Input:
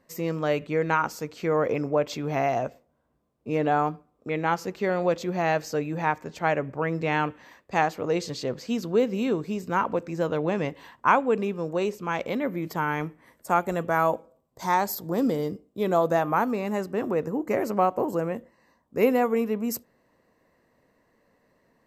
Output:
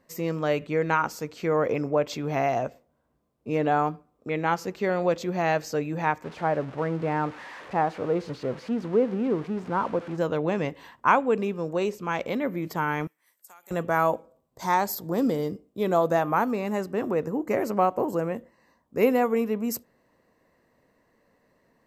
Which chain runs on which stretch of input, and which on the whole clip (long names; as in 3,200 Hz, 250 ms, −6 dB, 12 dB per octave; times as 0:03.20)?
0:06.24–0:10.18: spike at every zero crossing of −15 dBFS + low-pass filter 1,200 Hz
0:13.07–0:13.71: first difference + downward compressor 10 to 1, threshold −45 dBFS
whole clip: no processing